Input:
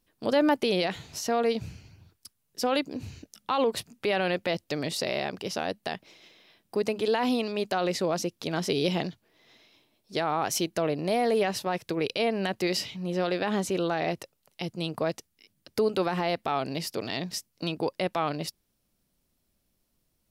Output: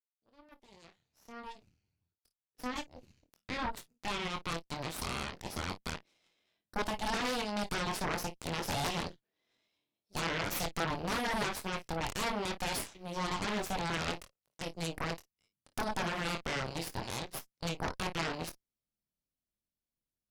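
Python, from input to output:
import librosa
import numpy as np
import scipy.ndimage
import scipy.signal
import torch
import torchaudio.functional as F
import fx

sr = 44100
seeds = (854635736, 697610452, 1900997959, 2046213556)

y = fx.fade_in_head(x, sr, length_s=6.1)
y = fx.room_early_taps(y, sr, ms=(24, 54), db=(-4.5, -11.0))
y = fx.cheby_harmonics(y, sr, harmonics=(3, 8), levels_db=(-8, -11), full_scale_db=-11.0)
y = F.gain(torch.from_numpy(y), -8.0).numpy()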